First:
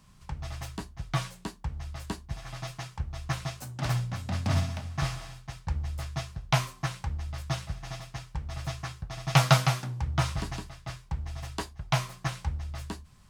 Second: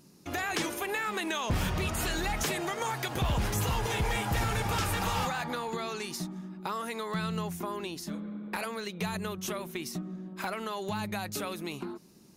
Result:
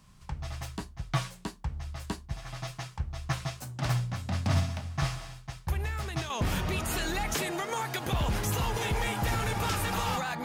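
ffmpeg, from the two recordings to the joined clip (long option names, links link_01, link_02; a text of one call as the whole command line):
ffmpeg -i cue0.wav -i cue1.wav -filter_complex "[1:a]asplit=2[link_01][link_02];[0:a]apad=whole_dur=10.44,atrim=end=10.44,atrim=end=6.302[link_03];[link_02]atrim=start=1.388:end=5.53[link_04];[link_01]atrim=start=0.77:end=1.39,asetpts=PTS-STARTPTS,volume=-8dB,afade=type=in:duration=0.004:curve=hsin,afade=type=out:start_time=0.616:duration=0.004:curve=hsin,adelay=5680[link_05];[link_03][link_04]acrossfade=duration=0.004:curve1=hsin:curve2=hsin[link_06];[link_06][link_05]amix=inputs=2:normalize=0" out.wav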